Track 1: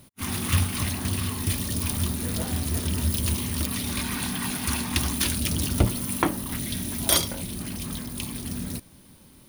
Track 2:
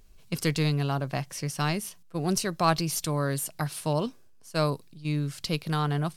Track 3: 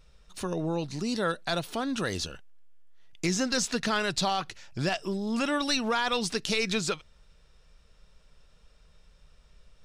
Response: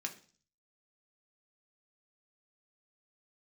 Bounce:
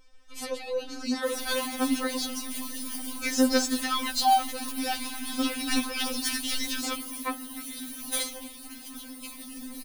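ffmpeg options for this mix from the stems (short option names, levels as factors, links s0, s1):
-filter_complex "[0:a]bandreject=f=60:t=h:w=6,bandreject=f=120:t=h:w=6,bandreject=f=180:t=h:w=6,bandreject=f=240:t=h:w=6,adelay=1050,volume=0.631[s0];[1:a]acompressor=threshold=0.0282:ratio=6,volume=0.891,asplit=2[s1][s2];[s2]volume=0.335[s3];[2:a]volume=0.944,asplit=3[s4][s5][s6];[s5]volume=0.473[s7];[s6]apad=whole_len=271913[s8];[s1][s8]sidechaingate=range=0.0224:threshold=0.00501:ratio=16:detection=peak[s9];[3:a]atrim=start_sample=2205[s10];[s3][s7]amix=inputs=2:normalize=0[s11];[s11][s10]afir=irnorm=-1:irlink=0[s12];[s0][s9][s4][s12]amix=inputs=4:normalize=0,afftfilt=real='re*3.46*eq(mod(b,12),0)':imag='im*3.46*eq(mod(b,12),0)':win_size=2048:overlap=0.75"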